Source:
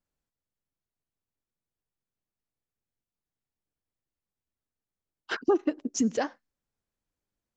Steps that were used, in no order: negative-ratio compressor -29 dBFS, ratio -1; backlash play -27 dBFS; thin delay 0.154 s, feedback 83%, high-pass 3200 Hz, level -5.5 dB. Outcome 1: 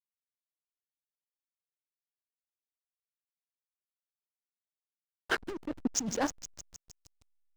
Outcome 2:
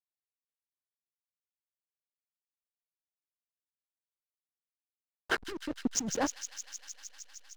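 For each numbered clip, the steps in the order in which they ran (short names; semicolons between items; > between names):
negative-ratio compressor > thin delay > backlash; negative-ratio compressor > backlash > thin delay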